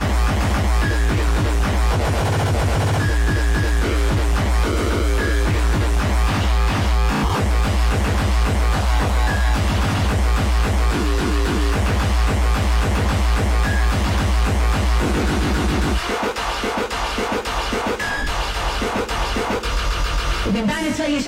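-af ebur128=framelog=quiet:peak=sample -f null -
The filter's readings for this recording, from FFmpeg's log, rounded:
Integrated loudness:
  I:         -19.8 LUFS
  Threshold: -29.8 LUFS
Loudness range:
  LRA:         2.7 LU
  Threshold: -39.7 LUFS
  LRA low:   -21.9 LUFS
  LRA high:  -19.2 LUFS
Sample peak:
  Peak:       -9.4 dBFS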